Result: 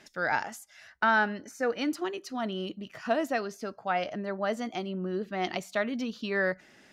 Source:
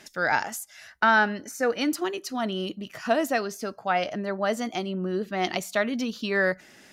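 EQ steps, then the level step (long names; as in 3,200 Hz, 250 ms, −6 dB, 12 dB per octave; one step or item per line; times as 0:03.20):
high-shelf EQ 7,300 Hz −11.5 dB
−4.0 dB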